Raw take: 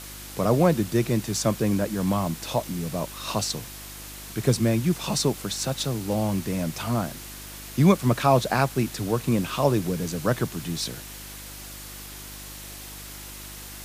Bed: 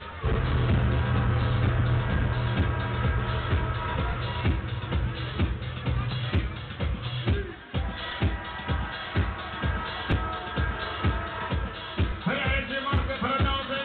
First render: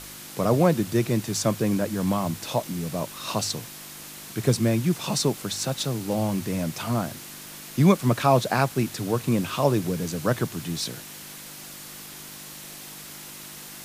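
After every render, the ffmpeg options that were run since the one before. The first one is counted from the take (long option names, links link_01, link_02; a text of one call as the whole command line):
ffmpeg -i in.wav -af "bandreject=frequency=50:width_type=h:width=4,bandreject=frequency=100:width_type=h:width=4" out.wav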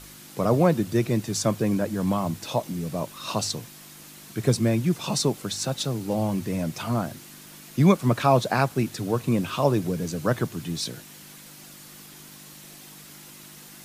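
ffmpeg -i in.wav -af "afftdn=noise_reduction=6:noise_floor=-41" out.wav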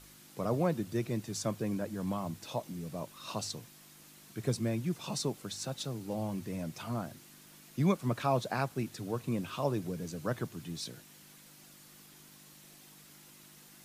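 ffmpeg -i in.wav -af "volume=-10.5dB" out.wav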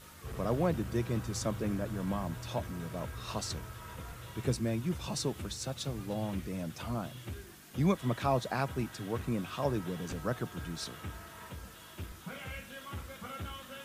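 ffmpeg -i in.wav -i bed.wav -filter_complex "[1:a]volume=-17dB[link_01];[0:a][link_01]amix=inputs=2:normalize=0" out.wav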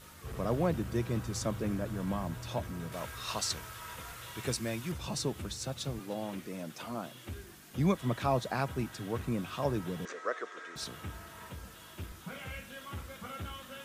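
ffmpeg -i in.wav -filter_complex "[0:a]asettb=1/sr,asplit=3[link_01][link_02][link_03];[link_01]atrim=end=2.924[link_04];[link_02]atrim=start=2.92:end=4.92,asetpts=PTS-STARTPTS,afade=type=in:duration=0.004:curve=qsin,afade=type=out:start_time=1.996:duration=0.004:curve=qsin,tiltshelf=frequency=630:gain=-6[link_05];[link_03]atrim=start=4.916[link_06];[link_04][link_05]acrossfade=duration=0.004:curve1=hsin:curve2=qsin[link_07];[link_07][link_06]acrossfade=duration=0.004:curve1=qsin:curve2=hsin,asettb=1/sr,asplit=3[link_08][link_09][link_10];[link_08]atrim=end=5.994[link_11];[link_09]atrim=start=5.99:end=7.29,asetpts=PTS-STARTPTS,afade=type=in:duration=0.004:curve=qsin,afade=type=out:start_time=1.296:duration=0.004:curve=qsin,highpass=220[link_12];[link_10]atrim=start=7.286[link_13];[link_11][link_12]acrossfade=duration=0.004:curve1=hsin:curve2=qsin[link_14];[link_14][link_13]acrossfade=duration=0.004:curve1=qsin:curve2=hsin,asettb=1/sr,asplit=3[link_15][link_16][link_17];[link_15]atrim=end=10.054[link_18];[link_16]atrim=start=10.05:end=10.76,asetpts=PTS-STARTPTS,afade=type=in:duration=0.004:curve=qsin,afade=type=out:start_time=0.706:duration=0.004:curve=qsin,highpass=frequency=400:width=0.5412,highpass=frequency=400:width=1.3066,equalizer=frequency=460:width_type=q:width=4:gain=4,equalizer=frequency=840:width_type=q:width=4:gain=-8,equalizer=frequency=1200:width_type=q:width=4:gain=6,equalizer=frequency=1900:width_type=q:width=4:gain=9,equalizer=frequency=2900:width_type=q:width=4:gain=-5,equalizer=frequency=4600:width_type=q:width=4:gain=-5,lowpass=frequency=6900:width=0.5412,lowpass=frequency=6900:width=1.3066[link_19];[link_17]atrim=start=10.756[link_20];[link_18][link_19]acrossfade=duration=0.004:curve1=hsin:curve2=qsin[link_21];[link_21][link_20]acrossfade=duration=0.004:curve1=qsin:curve2=hsin" out.wav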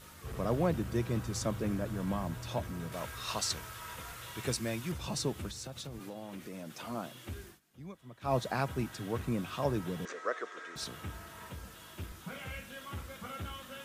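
ffmpeg -i in.wav -filter_complex "[0:a]asettb=1/sr,asplit=3[link_01][link_02][link_03];[link_01]atrim=end=5.494[link_04];[link_02]atrim=start=5.49:end=6.85,asetpts=PTS-STARTPTS,afade=type=in:duration=0.004:curve=qsin,afade=type=out:start_time=1.356:duration=0.004:curve=qsin,acompressor=threshold=-39dB:ratio=6:attack=3.2:release=140:knee=1:detection=peak[link_05];[link_03]atrim=start=6.846[link_06];[link_04][link_05]acrossfade=duration=0.004:curve1=hsin:curve2=qsin[link_07];[link_07][link_06]acrossfade=duration=0.004:curve1=qsin:curve2=hsin,asplit=3[link_08][link_09][link_10];[link_08]atrim=end=7.6,asetpts=PTS-STARTPTS,afade=type=out:start_time=7.47:duration=0.13:silence=0.112202[link_11];[link_09]atrim=start=7.6:end=8.21,asetpts=PTS-STARTPTS,volume=-19dB[link_12];[link_10]atrim=start=8.21,asetpts=PTS-STARTPTS,afade=type=in:duration=0.13:silence=0.112202[link_13];[link_11][link_12][link_13]concat=n=3:v=0:a=1" out.wav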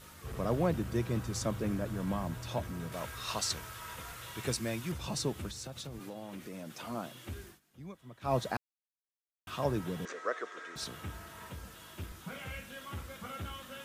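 ffmpeg -i in.wav -filter_complex "[0:a]asplit=3[link_01][link_02][link_03];[link_01]atrim=end=8.57,asetpts=PTS-STARTPTS,afade=type=out:start_time=8.566:duration=0.004:curve=hsin[link_04];[link_02]atrim=start=8.57:end=9.47,asetpts=PTS-STARTPTS,volume=0[link_05];[link_03]atrim=start=9.47,asetpts=PTS-STARTPTS,afade=type=in:duration=0.004:curve=hsin[link_06];[link_04][link_05][link_06]concat=n=3:v=0:a=1" out.wav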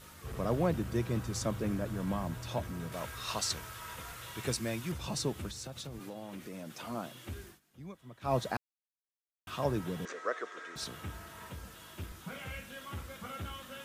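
ffmpeg -i in.wav -af anull out.wav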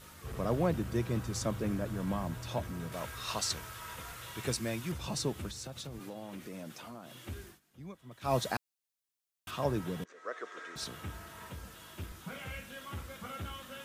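ffmpeg -i in.wav -filter_complex "[0:a]asettb=1/sr,asplit=3[link_01][link_02][link_03];[link_01]atrim=end=6.724[link_04];[link_02]atrim=start=6.72:end=7.14,asetpts=PTS-STARTPTS,afade=type=in:duration=0.004:curve=qsin,afade=type=out:start_time=0.416:duration=0.004:curve=qsin,acompressor=threshold=-44dB:ratio=4:attack=3.2:release=140:knee=1:detection=peak[link_05];[link_03]atrim=start=7.136[link_06];[link_04][link_05]acrossfade=duration=0.004:curve1=hsin:curve2=qsin[link_07];[link_07][link_06]acrossfade=duration=0.004:curve1=qsin:curve2=hsin,asettb=1/sr,asplit=3[link_08][link_09][link_10];[link_08]atrim=end=8.114[link_11];[link_09]atrim=start=8.11:end=9.51,asetpts=PTS-STARTPTS,afade=type=in:duration=0.004:curve=qsin,afade=type=out:start_time=1.396:duration=0.004:curve=qsin,highshelf=frequency=2700:gain=7.5[link_12];[link_10]atrim=start=9.506[link_13];[link_11][link_12]acrossfade=duration=0.004:curve1=hsin:curve2=qsin[link_14];[link_14][link_13]acrossfade=duration=0.004:curve1=qsin:curve2=hsin,asplit=2[link_15][link_16];[link_15]atrim=end=10.04,asetpts=PTS-STARTPTS,afade=type=out:start_time=10.036:duration=0.004:curve=hsin:silence=0.0707946[link_17];[link_16]atrim=start=10.04,asetpts=PTS-STARTPTS,afade=type=in:duration=0.54:silence=0.0707946[link_18];[link_17][link_18]concat=n=2:v=0:a=1" out.wav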